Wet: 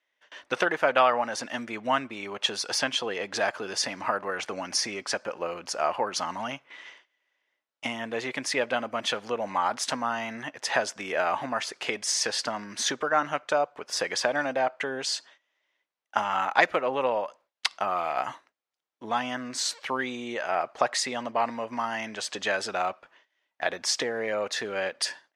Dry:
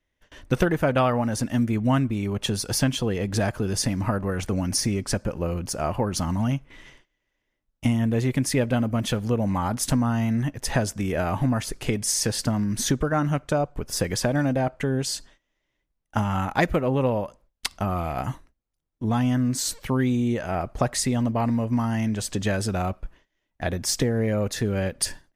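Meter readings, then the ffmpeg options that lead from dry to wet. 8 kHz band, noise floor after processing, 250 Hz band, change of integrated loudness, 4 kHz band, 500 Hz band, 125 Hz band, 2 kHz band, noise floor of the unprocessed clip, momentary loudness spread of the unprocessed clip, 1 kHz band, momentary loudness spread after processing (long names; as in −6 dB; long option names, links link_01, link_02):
−3.5 dB, −81 dBFS, −14.0 dB, −3.5 dB, +2.0 dB, −2.0 dB, −25.0 dB, +4.0 dB, −78 dBFS, 6 LU, +2.5 dB, 8 LU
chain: -af "highpass=690,lowpass=5000,volume=4dB"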